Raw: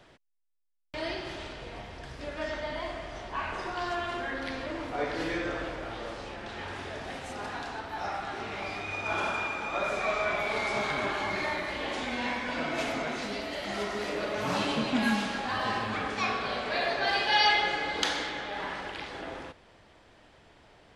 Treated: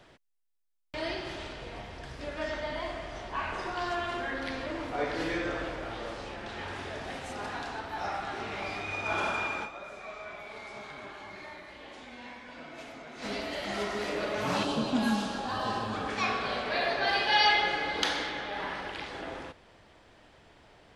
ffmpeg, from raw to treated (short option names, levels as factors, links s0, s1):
-filter_complex "[0:a]asettb=1/sr,asplit=3[s0][s1][s2];[s0]atrim=end=14.634[s3];[s1]atrim=start=14.63:end=16.08,asetpts=PTS-STARTPTS,afade=t=in:d=0.004:c=qsin,afade=t=out:st=1.446:d=0.004:c=qsin,equalizer=f=2100:w=2.2:g=-12.5[s4];[s2]atrim=start=16.076[s5];[s3][s4]acrossfade=d=0.004:c1=hsin:c2=qsin[s6];[s6][s5]acrossfade=d=0.004:c1=qsin:c2=hsin,asettb=1/sr,asplit=3[s7][s8][s9];[s7]atrim=end=16.624[s10];[s8]atrim=start=16.62:end=18.91,asetpts=PTS-STARTPTS,afade=t=in:d=0.004:c=qsin,afade=t=out:st=2.286:d=0.004:c=qsin,equalizer=f=7400:t=o:w=0.42:g=-5.5[s11];[s9]atrim=start=18.906[s12];[s10][s11]acrossfade=d=0.004:c1=hsin:c2=qsin[s13];[s13][s12]acrossfade=d=0.004:c1=qsin:c2=hsin,asplit=3[s14][s15][s16];[s14]atrim=end=10.07,asetpts=PTS-STARTPTS,afade=t=out:st=9.63:d=0.44:c=exp:silence=0.211349[s17];[s15]atrim=start=10.07:end=12.82,asetpts=PTS-STARTPTS,volume=0.211[s18];[s16]atrim=start=12.82,asetpts=PTS-STARTPTS,afade=t=in:d=0.44:c=exp:silence=0.211349[s19];[s17][s18][s19]concat=n=3:v=0:a=1"